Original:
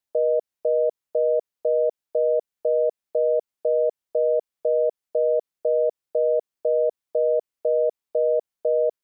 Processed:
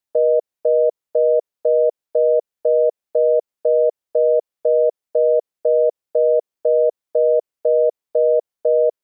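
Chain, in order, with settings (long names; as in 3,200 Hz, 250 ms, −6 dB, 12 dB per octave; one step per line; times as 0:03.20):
dynamic equaliser 520 Hz, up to +6 dB, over −35 dBFS, Q 1.1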